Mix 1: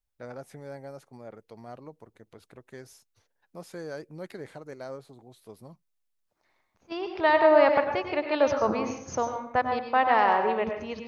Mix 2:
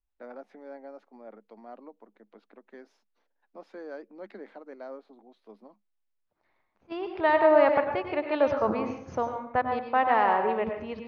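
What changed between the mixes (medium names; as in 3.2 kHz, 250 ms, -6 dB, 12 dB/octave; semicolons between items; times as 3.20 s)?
first voice: add rippled Chebyshev high-pass 200 Hz, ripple 3 dB; master: add distance through air 260 m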